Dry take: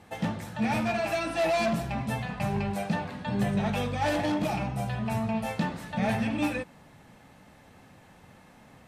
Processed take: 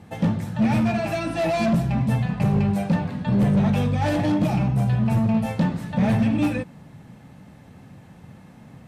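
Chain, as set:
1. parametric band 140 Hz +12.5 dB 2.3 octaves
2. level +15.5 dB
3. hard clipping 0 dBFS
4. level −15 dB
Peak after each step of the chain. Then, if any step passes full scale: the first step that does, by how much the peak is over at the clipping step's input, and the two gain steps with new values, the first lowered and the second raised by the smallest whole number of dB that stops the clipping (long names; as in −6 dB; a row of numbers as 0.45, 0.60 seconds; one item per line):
−7.0, +8.5, 0.0, −15.0 dBFS
step 2, 8.5 dB
step 2 +6.5 dB, step 4 −6 dB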